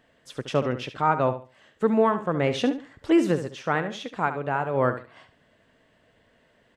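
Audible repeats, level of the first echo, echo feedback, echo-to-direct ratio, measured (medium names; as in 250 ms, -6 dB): 2, -11.0 dB, 23%, -11.0 dB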